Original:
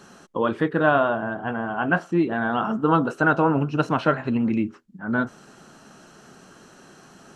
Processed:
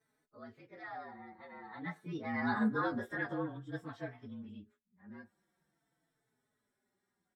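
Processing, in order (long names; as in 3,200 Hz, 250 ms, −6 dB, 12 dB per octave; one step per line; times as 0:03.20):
partials spread apart or drawn together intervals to 111%
source passing by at 0:02.68, 11 m/s, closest 2.2 metres
barber-pole flanger 4.1 ms −0.49 Hz
level −2 dB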